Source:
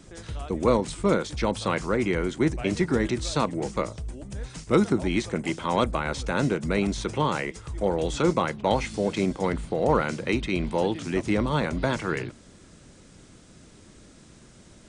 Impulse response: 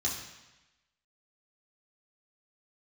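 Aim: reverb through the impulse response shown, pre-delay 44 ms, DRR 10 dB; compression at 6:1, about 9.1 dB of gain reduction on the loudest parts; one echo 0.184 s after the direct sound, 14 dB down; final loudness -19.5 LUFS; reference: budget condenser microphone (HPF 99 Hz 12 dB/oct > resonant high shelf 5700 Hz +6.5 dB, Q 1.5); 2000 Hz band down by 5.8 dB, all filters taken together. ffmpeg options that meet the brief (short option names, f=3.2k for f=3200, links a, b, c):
-filter_complex "[0:a]equalizer=f=2k:t=o:g=-7,acompressor=threshold=-25dB:ratio=6,aecho=1:1:184:0.2,asplit=2[a][b];[1:a]atrim=start_sample=2205,adelay=44[c];[b][c]afir=irnorm=-1:irlink=0,volume=-15dB[d];[a][d]amix=inputs=2:normalize=0,highpass=99,highshelf=f=5.7k:t=q:w=1.5:g=6.5,volume=11.5dB"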